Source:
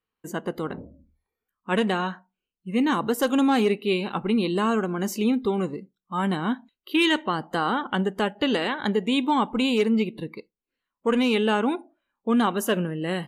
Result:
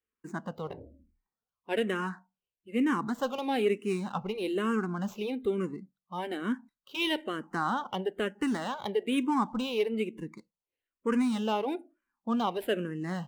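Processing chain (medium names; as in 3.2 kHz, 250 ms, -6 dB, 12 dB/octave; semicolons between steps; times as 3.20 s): median filter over 9 samples; barber-pole phaser -1.1 Hz; trim -3.5 dB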